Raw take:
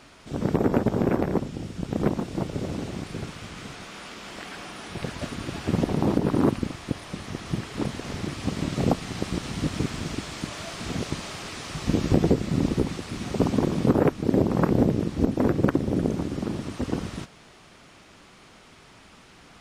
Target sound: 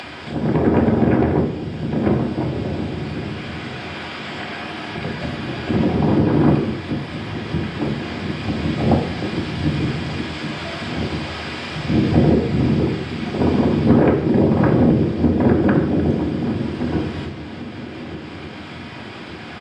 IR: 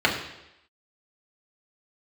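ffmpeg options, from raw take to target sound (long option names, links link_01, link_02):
-filter_complex "[0:a]asplit=2[link_01][link_02];[link_02]asetrate=22050,aresample=44100,atempo=2,volume=-8dB[link_03];[link_01][link_03]amix=inputs=2:normalize=0,asplit=2[link_04][link_05];[link_05]adelay=1185,lowpass=frequency=2000:poles=1,volume=-18.5dB,asplit=2[link_06][link_07];[link_07]adelay=1185,lowpass=frequency=2000:poles=1,volume=0.4,asplit=2[link_08][link_09];[link_09]adelay=1185,lowpass=frequency=2000:poles=1,volume=0.4[link_10];[link_04][link_06][link_08][link_10]amix=inputs=4:normalize=0[link_11];[1:a]atrim=start_sample=2205,asetrate=48510,aresample=44100[link_12];[link_11][link_12]afir=irnorm=-1:irlink=0,acompressor=mode=upward:threshold=-13dB:ratio=2.5,volume=-10dB"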